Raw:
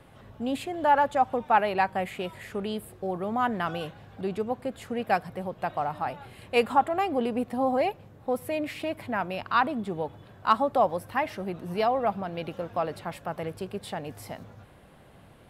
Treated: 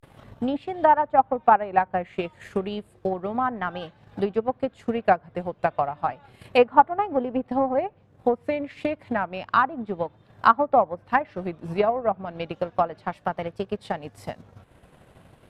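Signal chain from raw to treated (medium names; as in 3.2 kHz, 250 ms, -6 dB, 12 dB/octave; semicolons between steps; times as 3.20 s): vibrato 0.32 Hz 85 cents; low-pass that closes with the level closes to 1.5 kHz, closed at -22.5 dBFS; transient shaper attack +9 dB, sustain -8 dB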